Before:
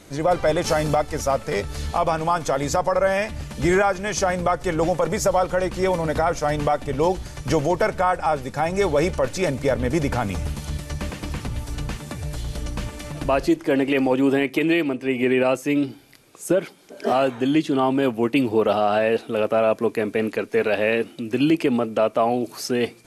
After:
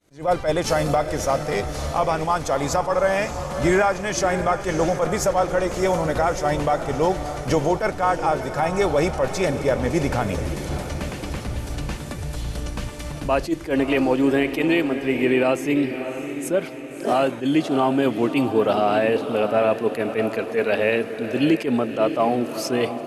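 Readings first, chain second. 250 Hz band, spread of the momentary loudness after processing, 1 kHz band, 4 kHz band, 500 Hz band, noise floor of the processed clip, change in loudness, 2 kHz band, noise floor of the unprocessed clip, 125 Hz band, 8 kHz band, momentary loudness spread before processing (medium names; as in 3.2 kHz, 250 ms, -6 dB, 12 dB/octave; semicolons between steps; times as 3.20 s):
0.0 dB, 10 LU, +0.5 dB, 0.0 dB, 0.0 dB, -33 dBFS, 0.0 dB, 0.0 dB, -45 dBFS, 0.0 dB, +0.5 dB, 11 LU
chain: expander -37 dBFS; echo that smears into a reverb 621 ms, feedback 50%, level -9.5 dB; attacks held to a fixed rise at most 210 dB/s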